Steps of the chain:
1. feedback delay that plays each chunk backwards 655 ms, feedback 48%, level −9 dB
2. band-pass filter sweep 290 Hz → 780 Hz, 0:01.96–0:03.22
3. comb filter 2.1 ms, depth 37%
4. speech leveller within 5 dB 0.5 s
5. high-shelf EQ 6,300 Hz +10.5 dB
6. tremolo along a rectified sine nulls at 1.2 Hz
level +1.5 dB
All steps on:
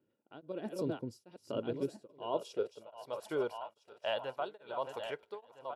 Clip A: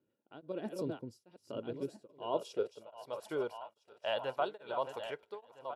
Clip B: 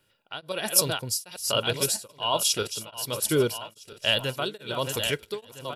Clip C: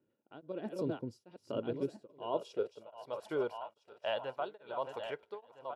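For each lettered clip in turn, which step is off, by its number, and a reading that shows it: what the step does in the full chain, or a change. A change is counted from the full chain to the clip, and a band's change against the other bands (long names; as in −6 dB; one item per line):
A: 4, change in crest factor +2.0 dB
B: 2, 8 kHz band +22.5 dB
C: 5, 4 kHz band −2.0 dB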